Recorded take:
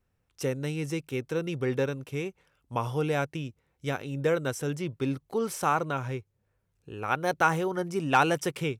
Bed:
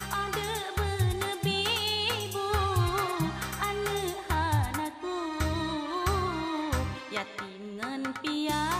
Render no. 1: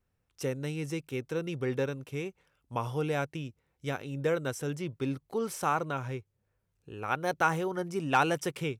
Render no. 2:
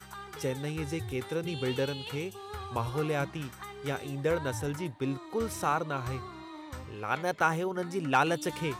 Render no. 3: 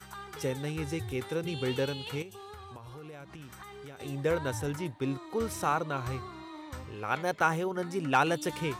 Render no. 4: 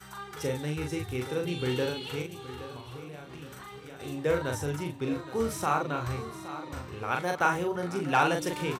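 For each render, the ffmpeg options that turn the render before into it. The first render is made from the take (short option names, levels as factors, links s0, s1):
-af "volume=0.708"
-filter_complex "[1:a]volume=0.224[s0];[0:a][s0]amix=inputs=2:normalize=0"
-filter_complex "[0:a]asettb=1/sr,asplit=3[s0][s1][s2];[s0]atrim=end=2.224[s3];[s1]atrim=start=2.22:end=4,asetpts=PTS-STARTPTS,afade=t=in:d=0.004:c=qsin,afade=t=out:st=1.776:d=0.004:c=qsin,acompressor=threshold=0.00794:ratio=12:attack=3.2:release=140:knee=1:detection=peak[s4];[s2]atrim=start=3.996[s5];[s3][s4]acrossfade=d=0.004:c1=hsin:c2=qsin[s6];[s6][s5]acrossfade=d=0.004:c1=qsin:c2=hsin"
-filter_complex "[0:a]asplit=2[s0][s1];[s1]adelay=40,volume=0.631[s2];[s0][s2]amix=inputs=2:normalize=0,aecho=1:1:820|1640|2460|3280:0.211|0.0888|0.0373|0.0157"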